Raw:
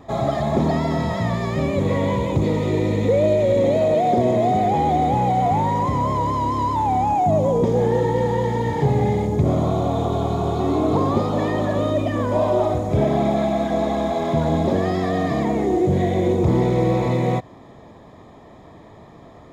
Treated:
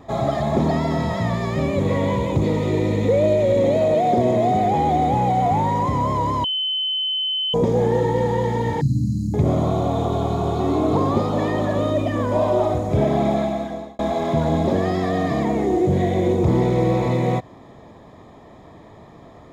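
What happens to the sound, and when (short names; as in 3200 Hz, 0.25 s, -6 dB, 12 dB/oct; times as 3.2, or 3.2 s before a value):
6.44–7.54 bleep 3050 Hz -20 dBFS
8.81–9.34 brick-wall FIR band-stop 330–3900 Hz
13.34–13.99 fade out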